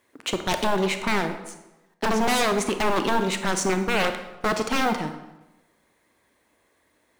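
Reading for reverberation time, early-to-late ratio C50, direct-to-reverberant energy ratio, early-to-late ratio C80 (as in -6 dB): 1.0 s, 9.0 dB, 7.5 dB, 11.0 dB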